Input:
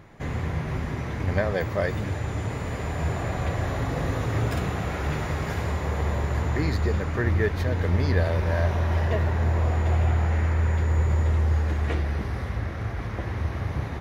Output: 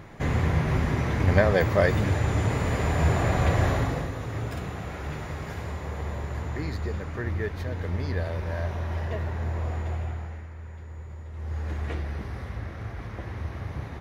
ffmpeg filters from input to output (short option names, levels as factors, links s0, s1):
-af "volume=7.08,afade=t=out:st=3.66:d=0.44:silence=0.281838,afade=t=out:st=9.76:d=0.71:silence=0.266073,afade=t=in:st=11.32:d=0.41:silence=0.237137"